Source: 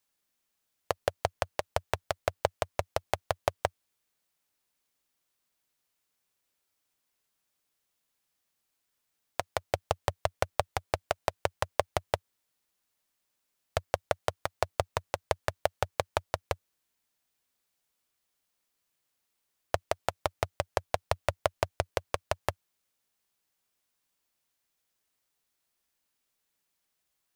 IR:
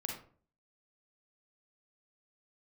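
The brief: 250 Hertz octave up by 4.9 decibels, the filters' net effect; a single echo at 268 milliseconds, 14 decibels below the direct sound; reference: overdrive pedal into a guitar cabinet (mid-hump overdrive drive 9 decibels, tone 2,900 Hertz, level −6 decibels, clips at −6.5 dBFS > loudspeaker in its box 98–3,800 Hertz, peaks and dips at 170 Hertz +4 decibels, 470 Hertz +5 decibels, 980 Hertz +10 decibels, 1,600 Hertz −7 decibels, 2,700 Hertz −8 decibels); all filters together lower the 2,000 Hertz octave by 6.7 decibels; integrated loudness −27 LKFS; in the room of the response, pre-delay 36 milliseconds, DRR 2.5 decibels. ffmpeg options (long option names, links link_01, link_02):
-filter_complex "[0:a]equalizer=frequency=250:width_type=o:gain=6.5,equalizer=frequency=2000:width_type=o:gain=-3,aecho=1:1:268:0.2,asplit=2[link_01][link_02];[1:a]atrim=start_sample=2205,adelay=36[link_03];[link_02][link_03]afir=irnorm=-1:irlink=0,volume=-3dB[link_04];[link_01][link_04]amix=inputs=2:normalize=0,asplit=2[link_05][link_06];[link_06]highpass=frequency=720:poles=1,volume=9dB,asoftclip=type=tanh:threshold=-6.5dB[link_07];[link_05][link_07]amix=inputs=2:normalize=0,lowpass=frequency=2900:poles=1,volume=-6dB,highpass=98,equalizer=frequency=170:width_type=q:width=4:gain=4,equalizer=frequency=470:width_type=q:width=4:gain=5,equalizer=frequency=980:width_type=q:width=4:gain=10,equalizer=frequency=1600:width_type=q:width=4:gain=-7,equalizer=frequency=2700:width_type=q:width=4:gain=-8,lowpass=frequency=3800:width=0.5412,lowpass=frequency=3800:width=1.3066,volume=1dB"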